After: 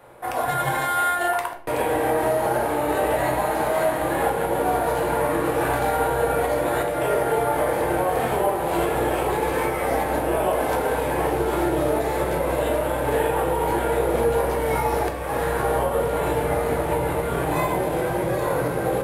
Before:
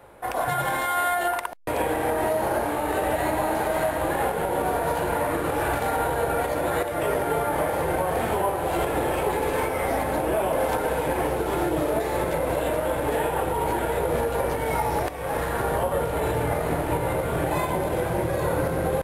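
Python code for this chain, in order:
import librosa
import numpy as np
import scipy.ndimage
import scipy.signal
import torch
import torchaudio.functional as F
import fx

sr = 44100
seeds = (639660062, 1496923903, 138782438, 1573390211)

y = fx.low_shelf(x, sr, hz=100.0, db=-6.0)
y = fx.room_shoebox(y, sr, seeds[0], volume_m3=60.0, walls='mixed', distance_m=0.52)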